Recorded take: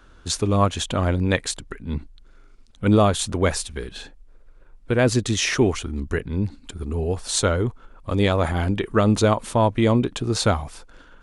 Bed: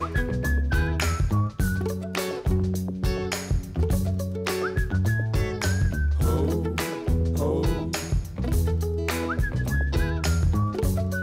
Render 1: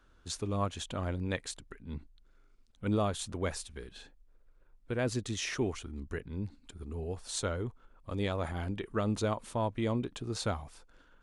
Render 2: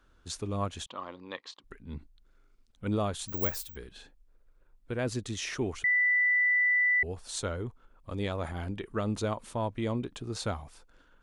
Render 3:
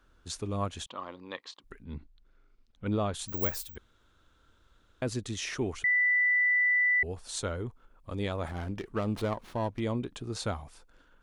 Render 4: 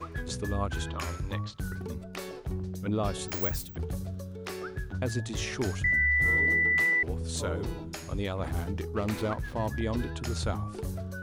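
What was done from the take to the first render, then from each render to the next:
level −13.5 dB
0:00.86–0:01.64: loudspeaker in its box 420–4,800 Hz, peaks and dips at 430 Hz −5 dB, 660 Hz −7 dB, 1,100 Hz +9 dB, 1,500 Hz −9 dB, 2,300 Hz −6 dB; 0:03.28–0:03.76: bad sample-rate conversion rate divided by 2×, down filtered, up zero stuff; 0:05.84–0:07.03: beep over 1,980 Hz −22 dBFS
0:01.84–0:03.14: low-pass filter 4,900 Hz; 0:03.78–0:05.02: fill with room tone; 0:08.47–0:09.80: windowed peak hold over 5 samples
mix in bed −11 dB

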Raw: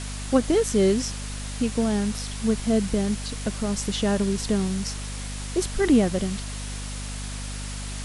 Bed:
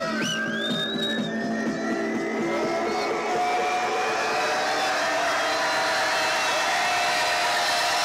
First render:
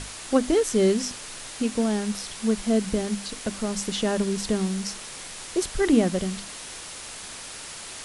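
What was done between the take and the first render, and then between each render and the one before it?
mains-hum notches 50/100/150/200/250/300 Hz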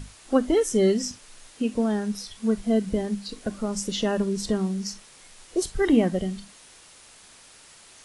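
noise reduction from a noise print 12 dB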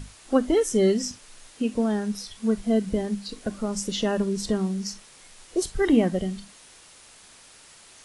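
no processing that can be heard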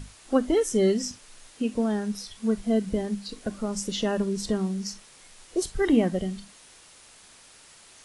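level −1.5 dB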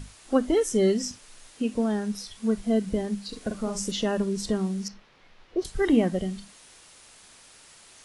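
0:03.28–0:03.92: double-tracking delay 46 ms −6 dB
0:04.88–0:05.65: high-frequency loss of the air 280 metres

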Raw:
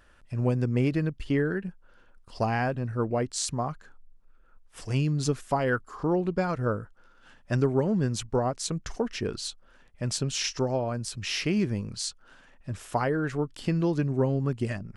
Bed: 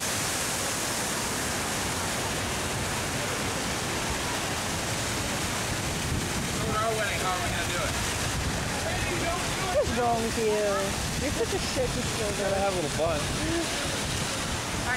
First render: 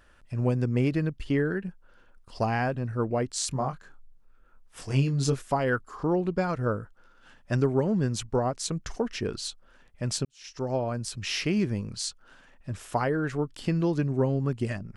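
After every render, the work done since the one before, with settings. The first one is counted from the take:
0:03.49–0:05.42: double-tracking delay 22 ms −5 dB
0:10.25–0:10.74: fade in quadratic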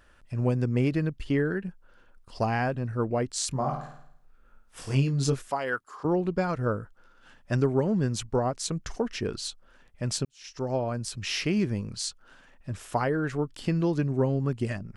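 0:03.59–0:04.95: flutter between parallel walls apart 9.1 metres, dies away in 0.66 s
0:05.50–0:06.05: high-pass filter 710 Hz 6 dB per octave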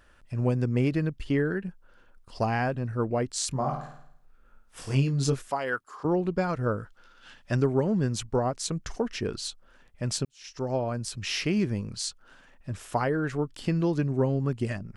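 0:06.78–0:07.52: parametric band 3,800 Hz +9.5 dB 2.2 octaves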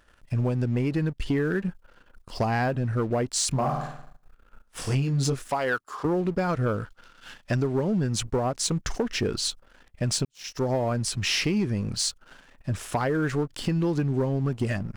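downward compressor 6 to 1, threshold −28 dBFS, peak gain reduction 9.5 dB
leveller curve on the samples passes 2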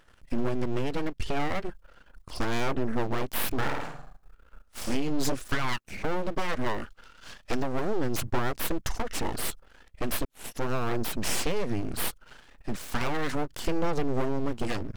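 phase shifter 0.36 Hz, delay 2.5 ms, feedback 21%
full-wave rectification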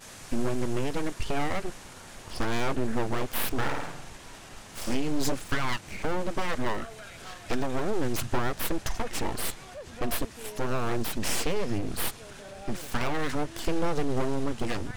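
mix in bed −17.5 dB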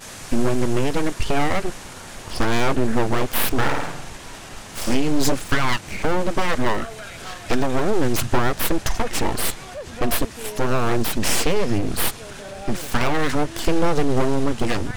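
level +8.5 dB

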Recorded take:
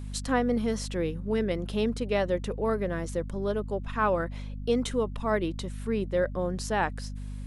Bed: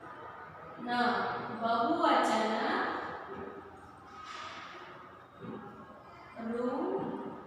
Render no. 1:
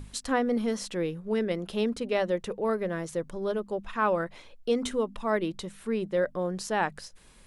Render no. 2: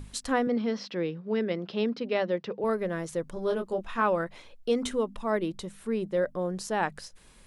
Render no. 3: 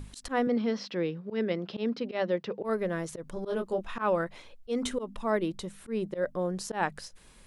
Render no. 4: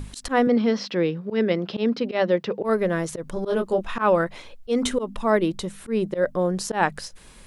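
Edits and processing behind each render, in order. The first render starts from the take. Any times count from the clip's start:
mains-hum notches 50/100/150/200/250 Hz
0:00.47–0:02.64: Chebyshev band-pass filter 120–5,200 Hz, order 4; 0:03.34–0:04.02: double-tracking delay 22 ms −4 dB; 0:05.13–0:06.83: parametric band 2,400 Hz −3 dB 2.4 octaves
volume swells 103 ms
level +8 dB

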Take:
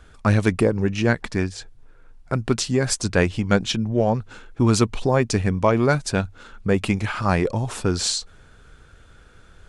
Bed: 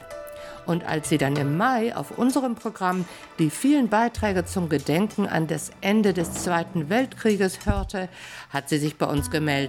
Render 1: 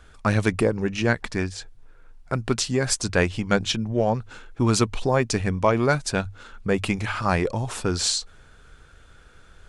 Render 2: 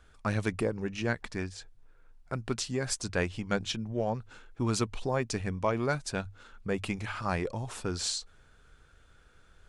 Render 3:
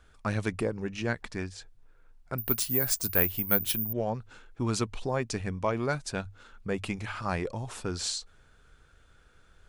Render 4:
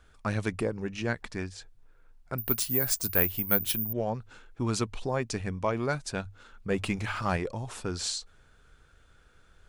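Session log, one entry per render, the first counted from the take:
parametric band 200 Hz −3.5 dB 2.7 octaves; mains-hum notches 50/100 Hz
level −9 dB
0:02.38–0:03.93: bad sample-rate conversion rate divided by 3×, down none, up zero stuff
0:06.70–0:07.37: leveller curve on the samples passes 1

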